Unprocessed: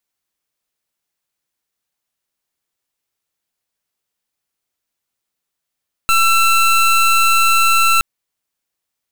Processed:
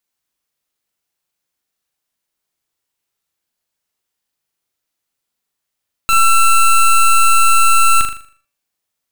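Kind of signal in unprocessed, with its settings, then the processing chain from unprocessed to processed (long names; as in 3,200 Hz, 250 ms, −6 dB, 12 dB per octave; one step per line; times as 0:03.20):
pulse wave 1,340 Hz, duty 24% −12 dBFS 1.92 s
hum removal 116 Hz, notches 24
on a send: flutter between parallel walls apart 6.8 metres, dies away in 0.45 s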